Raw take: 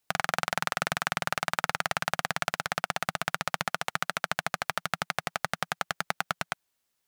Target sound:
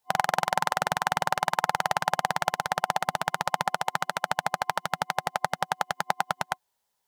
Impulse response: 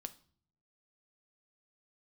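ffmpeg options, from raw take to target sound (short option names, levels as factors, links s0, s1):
-af "superequalizer=6b=0.355:7b=1.41:8b=1.58:9b=3.16:12b=0.708"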